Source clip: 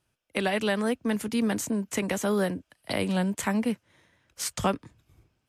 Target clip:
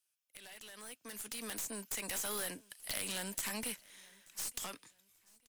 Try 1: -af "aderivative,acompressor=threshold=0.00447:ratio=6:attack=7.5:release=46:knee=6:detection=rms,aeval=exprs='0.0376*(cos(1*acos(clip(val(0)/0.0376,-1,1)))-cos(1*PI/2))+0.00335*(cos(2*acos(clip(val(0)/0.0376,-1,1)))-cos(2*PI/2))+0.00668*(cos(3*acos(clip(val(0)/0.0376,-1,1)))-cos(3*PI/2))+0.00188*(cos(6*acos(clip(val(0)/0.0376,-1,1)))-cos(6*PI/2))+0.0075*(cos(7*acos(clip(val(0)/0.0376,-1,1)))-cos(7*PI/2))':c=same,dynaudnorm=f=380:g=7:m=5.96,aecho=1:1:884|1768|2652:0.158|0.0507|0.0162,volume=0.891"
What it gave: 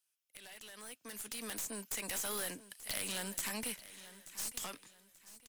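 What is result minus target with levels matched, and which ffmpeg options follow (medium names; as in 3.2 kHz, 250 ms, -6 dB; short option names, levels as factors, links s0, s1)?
echo-to-direct +9.5 dB
-af "aderivative,acompressor=threshold=0.00447:ratio=6:attack=7.5:release=46:knee=6:detection=rms,aeval=exprs='0.0376*(cos(1*acos(clip(val(0)/0.0376,-1,1)))-cos(1*PI/2))+0.00335*(cos(2*acos(clip(val(0)/0.0376,-1,1)))-cos(2*PI/2))+0.00668*(cos(3*acos(clip(val(0)/0.0376,-1,1)))-cos(3*PI/2))+0.00188*(cos(6*acos(clip(val(0)/0.0376,-1,1)))-cos(6*PI/2))+0.0075*(cos(7*acos(clip(val(0)/0.0376,-1,1)))-cos(7*PI/2))':c=same,dynaudnorm=f=380:g=7:m=5.96,aecho=1:1:884|1768:0.0531|0.017,volume=0.891"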